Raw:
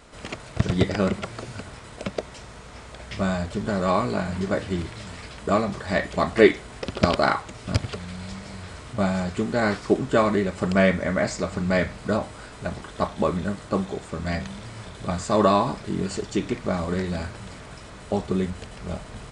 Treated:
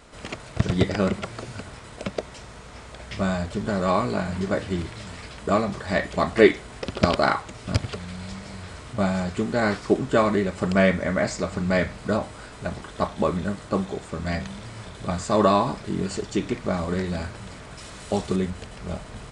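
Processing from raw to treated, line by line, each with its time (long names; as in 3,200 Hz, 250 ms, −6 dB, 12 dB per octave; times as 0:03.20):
0:17.78–0:18.36: high-shelf EQ 2,800 Hz +9 dB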